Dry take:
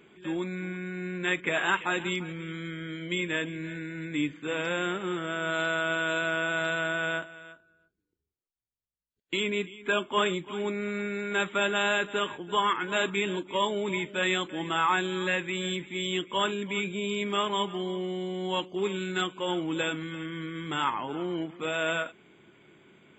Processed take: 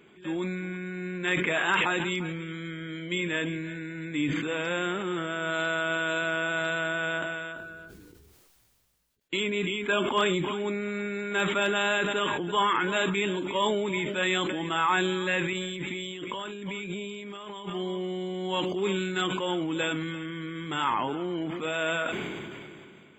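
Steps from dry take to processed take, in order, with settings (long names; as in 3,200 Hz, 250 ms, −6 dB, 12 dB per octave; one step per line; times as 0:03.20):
0:15.53–0:17.70: compressor whose output falls as the input rises −40 dBFS, ratio −1
hard clipping −14.5 dBFS, distortion −42 dB
level that may fall only so fast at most 24 dB per second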